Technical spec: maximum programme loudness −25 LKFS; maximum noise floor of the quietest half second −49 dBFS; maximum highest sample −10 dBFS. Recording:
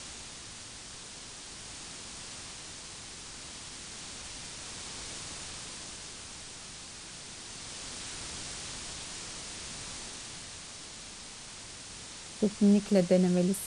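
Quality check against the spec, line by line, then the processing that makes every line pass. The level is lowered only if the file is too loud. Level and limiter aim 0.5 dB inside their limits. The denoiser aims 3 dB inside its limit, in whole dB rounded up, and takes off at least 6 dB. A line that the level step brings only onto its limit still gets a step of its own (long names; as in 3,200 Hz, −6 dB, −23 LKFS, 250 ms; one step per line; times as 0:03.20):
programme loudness −35.5 LKFS: in spec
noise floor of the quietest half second −46 dBFS: out of spec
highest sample −12.5 dBFS: in spec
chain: broadband denoise 6 dB, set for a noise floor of −46 dBFS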